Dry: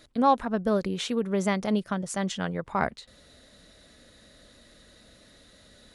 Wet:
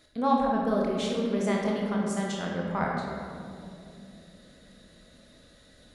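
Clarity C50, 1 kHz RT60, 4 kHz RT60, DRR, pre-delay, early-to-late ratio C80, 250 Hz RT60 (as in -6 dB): 0.0 dB, 2.2 s, 1.3 s, -2.0 dB, 23 ms, 2.0 dB, 4.3 s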